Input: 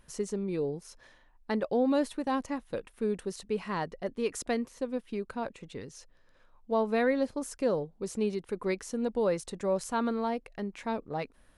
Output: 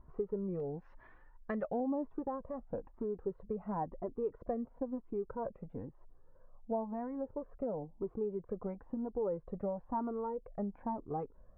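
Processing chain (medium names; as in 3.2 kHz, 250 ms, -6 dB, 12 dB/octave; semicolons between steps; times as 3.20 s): low-pass 1.1 kHz 24 dB/octave, from 0.60 s 1.8 kHz, from 1.80 s 1 kHz; compression 6:1, threshold -33 dBFS, peak gain reduction 10.5 dB; Shepard-style flanger rising 1 Hz; trim +5 dB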